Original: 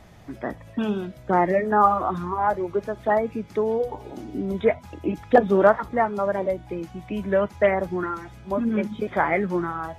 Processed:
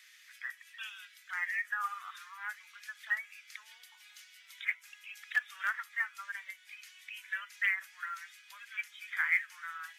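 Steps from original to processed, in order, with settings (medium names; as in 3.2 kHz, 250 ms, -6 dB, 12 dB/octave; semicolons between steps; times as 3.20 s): steep high-pass 1.7 kHz 36 dB/octave; dynamic bell 4 kHz, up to -7 dB, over -55 dBFS, Q 1.6; in parallel at -11.5 dB: short-mantissa float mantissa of 2-bit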